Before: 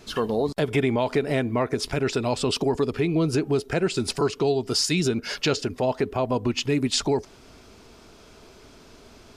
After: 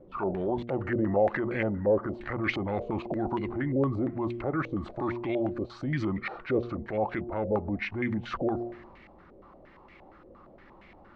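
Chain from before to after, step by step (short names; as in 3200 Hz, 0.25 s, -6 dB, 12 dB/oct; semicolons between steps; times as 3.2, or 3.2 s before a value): de-hum 141 Hz, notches 6; varispeed -16%; transient shaper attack -6 dB, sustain +4 dB; stepped low-pass 8.6 Hz 520–2200 Hz; gain -6 dB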